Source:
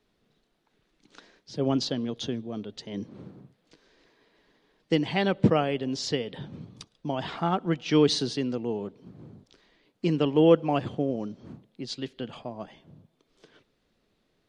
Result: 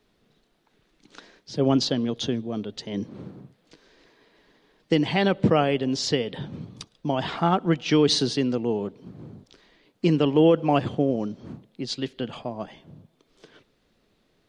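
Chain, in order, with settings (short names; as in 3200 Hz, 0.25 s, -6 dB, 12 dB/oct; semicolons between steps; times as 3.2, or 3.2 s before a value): limiter -14.5 dBFS, peak gain reduction 7.5 dB; gain +5 dB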